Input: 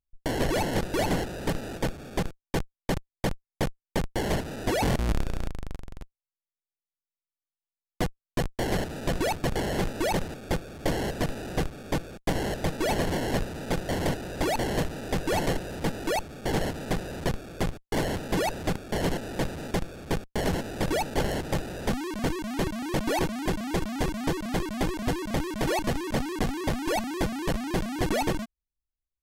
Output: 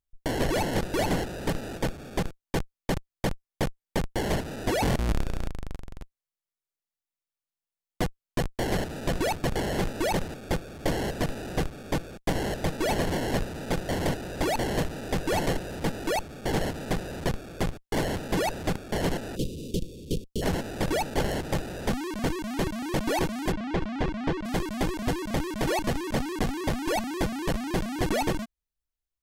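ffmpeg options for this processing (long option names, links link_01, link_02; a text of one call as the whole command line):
ffmpeg -i in.wav -filter_complex "[0:a]asplit=3[link_01][link_02][link_03];[link_01]afade=type=out:start_time=19.35:duration=0.02[link_04];[link_02]asuperstop=centerf=1200:order=12:qfactor=0.51,afade=type=in:start_time=19.35:duration=0.02,afade=type=out:start_time=20.41:duration=0.02[link_05];[link_03]afade=type=in:start_time=20.41:duration=0.02[link_06];[link_04][link_05][link_06]amix=inputs=3:normalize=0,asplit=3[link_07][link_08][link_09];[link_07]afade=type=out:start_time=23.51:duration=0.02[link_10];[link_08]lowpass=3300,afade=type=in:start_time=23.51:duration=0.02,afade=type=out:start_time=24.44:duration=0.02[link_11];[link_09]afade=type=in:start_time=24.44:duration=0.02[link_12];[link_10][link_11][link_12]amix=inputs=3:normalize=0" out.wav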